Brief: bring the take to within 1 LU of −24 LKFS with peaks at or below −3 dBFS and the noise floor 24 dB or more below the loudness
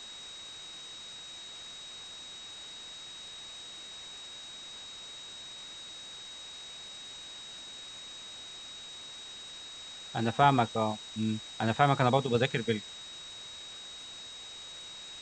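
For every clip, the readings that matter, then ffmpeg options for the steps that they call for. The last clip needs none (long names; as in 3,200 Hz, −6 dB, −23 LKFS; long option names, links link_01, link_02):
interfering tone 3,800 Hz; level of the tone −44 dBFS; background noise floor −46 dBFS; target noise floor −59 dBFS; integrated loudness −35.0 LKFS; sample peak −8.5 dBFS; target loudness −24.0 LKFS
→ -af "bandreject=frequency=3800:width=30"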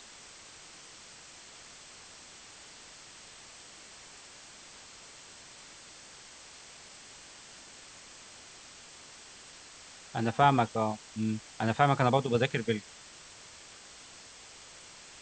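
interfering tone none found; background noise floor −52 dBFS; target noise floor −53 dBFS
→ -af "afftdn=noise_reduction=6:noise_floor=-52"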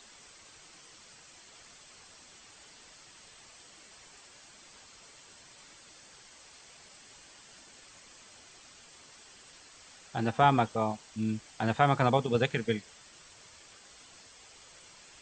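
background noise floor −55 dBFS; integrated loudness −29.0 LKFS; sample peak −8.5 dBFS; target loudness −24.0 LKFS
→ -af "volume=5dB"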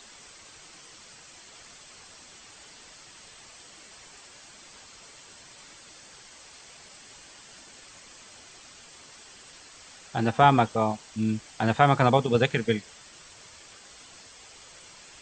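integrated loudness −24.0 LKFS; sample peak −3.5 dBFS; background noise floor −50 dBFS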